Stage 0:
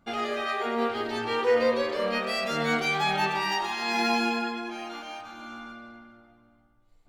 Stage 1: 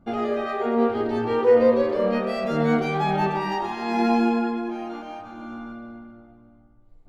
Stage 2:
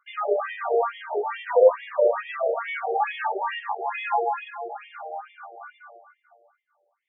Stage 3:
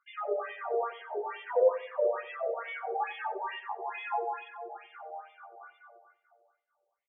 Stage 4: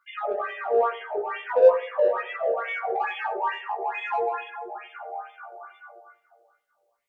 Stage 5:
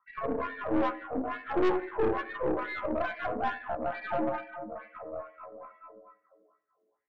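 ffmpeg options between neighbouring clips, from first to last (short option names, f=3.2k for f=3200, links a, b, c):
-af "tiltshelf=f=1.2k:g=10"
-af "afftfilt=real='re*between(b*sr/1024,540*pow(2600/540,0.5+0.5*sin(2*PI*2.3*pts/sr))/1.41,540*pow(2600/540,0.5+0.5*sin(2*PI*2.3*pts/sr))*1.41)':imag='im*between(b*sr/1024,540*pow(2600/540,0.5+0.5*sin(2*PI*2.3*pts/sr))/1.41,540*pow(2600/540,0.5+0.5*sin(2*PI*2.3*pts/sr))*1.41)':win_size=1024:overlap=0.75,volume=5dB"
-filter_complex "[0:a]asplit=2[a][b];[b]adelay=91,lowpass=f=1k:p=1,volume=-13dB,asplit=2[c][d];[d]adelay=91,lowpass=f=1k:p=1,volume=0.41,asplit=2[e][f];[f]adelay=91,lowpass=f=1k:p=1,volume=0.41,asplit=2[g][h];[h]adelay=91,lowpass=f=1k:p=1,volume=0.41[i];[a][c][e][g][i]amix=inputs=5:normalize=0,volume=-8.5dB"
-filter_complex "[0:a]asplit=2[a][b];[b]asoftclip=type=tanh:threshold=-29.5dB,volume=-8dB[c];[a][c]amix=inputs=2:normalize=0,flanger=delay=15.5:depth=2.2:speed=0.38,volume=8.5dB"
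-af "highpass=f=190:t=q:w=0.5412,highpass=f=190:t=q:w=1.307,lowpass=f=2.2k:t=q:w=0.5176,lowpass=f=2.2k:t=q:w=0.7071,lowpass=f=2.2k:t=q:w=1.932,afreqshift=-150,aeval=exprs='(tanh(14.1*val(0)+0.7)-tanh(0.7))/14.1':c=same"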